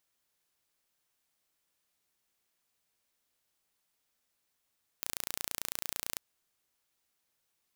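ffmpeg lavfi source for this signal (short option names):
-f lavfi -i "aevalsrc='0.422*eq(mod(n,1521),0)':d=1.15:s=44100"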